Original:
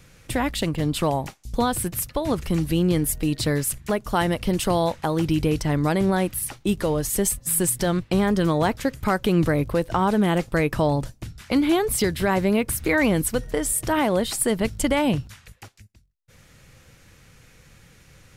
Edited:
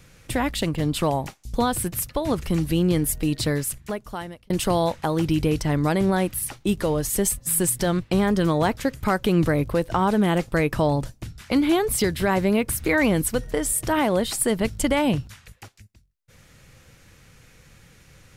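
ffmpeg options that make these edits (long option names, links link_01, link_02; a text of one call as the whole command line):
ffmpeg -i in.wav -filter_complex "[0:a]asplit=2[link_01][link_02];[link_01]atrim=end=4.5,asetpts=PTS-STARTPTS,afade=type=out:start_time=3.41:duration=1.09[link_03];[link_02]atrim=start=4.5,asetpts=PTS-STARTPTS,afade=type=in:duration=0.004:curve=hsin[link_04];[link_03][link_04]concat=n=2:v=0:a=1" out.wav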